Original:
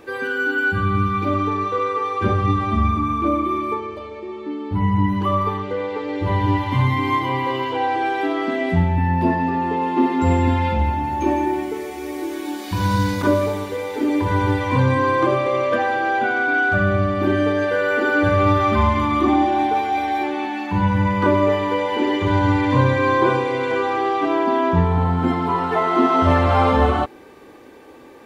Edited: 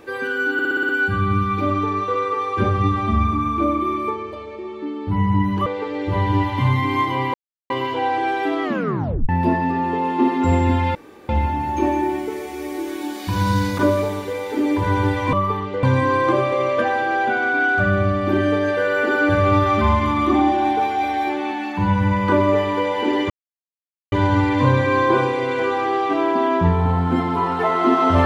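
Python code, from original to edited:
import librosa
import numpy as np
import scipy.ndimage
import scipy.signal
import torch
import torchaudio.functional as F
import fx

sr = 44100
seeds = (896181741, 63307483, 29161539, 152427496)

y = fx.edit(x, sr, fx.stutter(start_s=0.53, slice_s=0.06, count=7),
    fx.move(start_s=5.3, length_s=0.5, to_s=14.77),
    fx.insert_silence(at_s=7.48, length_s=0.36),
    fx.tape_stop(start_s=8.41, length_s=0.66),
    fx.insert_room_tone(at_s=10.73, length_s=0.34),
    fx.insert_silence(at_s=22.24, length_s=0.82), tone=tone)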